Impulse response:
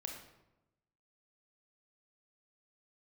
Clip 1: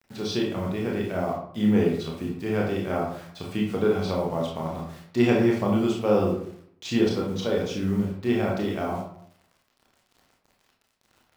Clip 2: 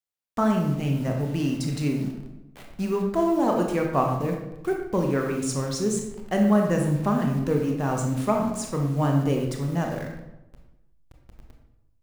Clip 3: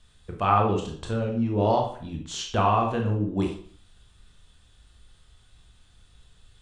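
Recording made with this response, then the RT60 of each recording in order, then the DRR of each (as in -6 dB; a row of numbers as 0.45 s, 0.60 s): 2; 0.65 s, 0.95 s, 0.50 s; -3.0 dB, 1.0 dB, 0.5 dB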